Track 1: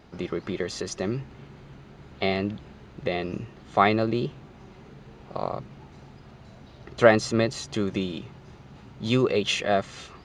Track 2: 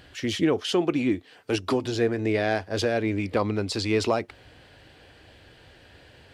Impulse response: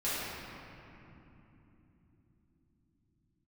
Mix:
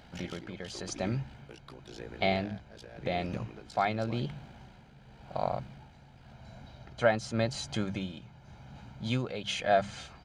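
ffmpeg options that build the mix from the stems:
-filter_complex "[0:a]aecho=1:1:1.3:0.62,volume=-3dB[link_01];[1:a]lowshelf=frequency=250:gain=-11,acompressor=threshold=-32dB:ratio=6,tremolo=f=57:d=0.974,volume=-5dB[link_02];[link_01][link_02]amix=inputs=2:normalize=0,tremolo=f=0.91:d=0.58,bandreject=frequency=50:width_type=h:width=6,bandreject=frequency=100:width_type=h:width=6,bandreject=frequency=150:width_type=h:width=6,bandreject=frequency=200:width_type=h:width=6"

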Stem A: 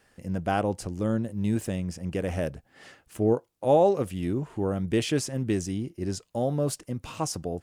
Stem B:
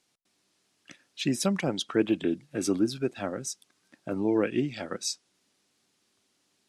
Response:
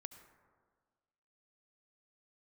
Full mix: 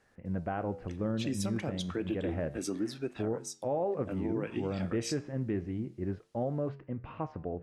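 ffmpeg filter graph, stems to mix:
-filter_complex "[0:a]lowpass=frequency=2200:width=0.5412,lowpass=frequency=2200:width=1.3066,volume=0dB[link_01];[1:a]volume=-2dB[link_02];[link_01][link_02]amix=inputs=2:normalize=0,flanger=delay=9.2:depth=8.1:regen=-83:speed=0.31:shape=triangular,alimiter=limit=-23.5dB:level=0:latency=1:release=158"

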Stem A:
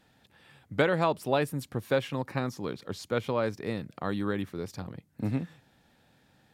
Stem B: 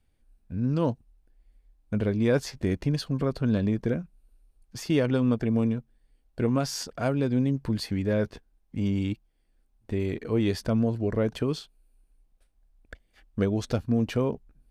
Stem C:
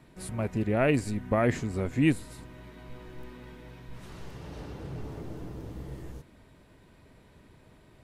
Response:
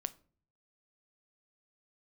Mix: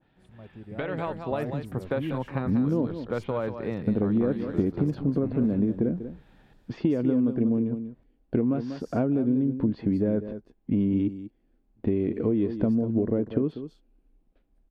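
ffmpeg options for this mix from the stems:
-filter_complex "[0:a]acompressor=threshold=-29dB:ratio=2.5,volume=-3.5dB,asplit=2[link_01][link_02];[link_02]volume=-9.5dB[link_03];[1:a]equalizer=frequency=280:width_type=o:width=2.1:gain=14.5,adelay=1950,volume=-9dB,asplit=2[link_04][link_05];[link_05]volume=-19.5dB[link_06];[2:a]lowpass=frequency=1000:poles=1,volume=-16dB[link_07];[link_01][link_04]amix=inputs=2:normalize=0,lowpass=frequency=3500:width=0.5412,lowpass=frequency=3500:width=1.3066,acompressor=threshold=-28dB:ratio=10,volume=0dB[link_08];[link_03][link_06]amix=inputs=2:normalize=0,aecho=0:1:192:1[link_09];[link_07][link_08][link_09]amix=inputs=3:normalize=0,dynaudnorm=framelen=170:gausssize=13:maxgain=7dB,adynamicequalizer=threshold=0.00282:dfrequency=1600:dqfactor=0.7:tfrequency=1600:tqfactor=0.7:attack=5:release=100:ratio=0.375:range=3.5:mode=cutabove:tftype=highshelf"

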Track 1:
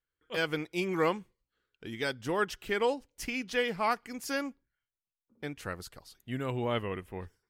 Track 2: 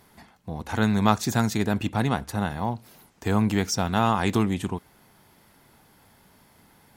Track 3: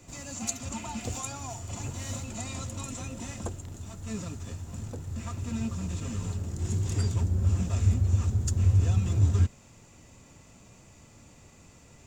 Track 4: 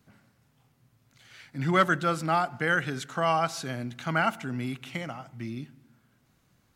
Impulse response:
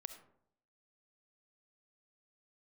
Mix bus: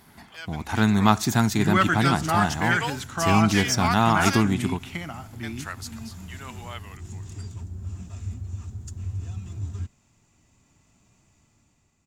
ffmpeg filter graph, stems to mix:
-filter_complex "[0:a]dynaudnorm=framelen=250:gausssize=11:maxgain=14dB,highpass=690,equalizer=frequency=6500:width=1.5:gain=7.5,volume=-8dB[link_01];[1:a]volume=1.5dB,asplit=2[link_02][link_03];[link_03]volume=-13dB[link_04];[2:a]dynaudnorm=framelen=210:gausssize=11:maxgain=13dB,adelay=400,volume=-19.5dB[link_05];[3:a]volume=-0.5dB,asplit=2[link_06][link_07];[link_07]volume=-6dB[link_08];[4:a]atrim=start_sample=2205[link_09];[link_04][link_08]amix=inputs=2:normalize=0[link_10];[link_10][link_09]afir=irnorm=-1:irlink=0[link_11];[link_01][link_02][link_05][link_06][link_11]amix=inputs=5:normalize=0,equalizer=frequency=510:width=3.8:gain=-10"

